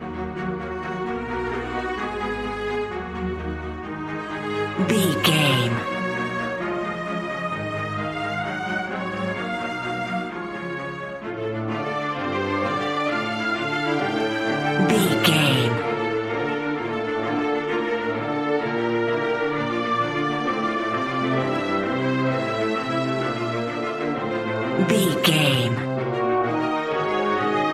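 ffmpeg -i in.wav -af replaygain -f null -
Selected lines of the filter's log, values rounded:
track_gain = +3.7 dB
track_peak = 0.484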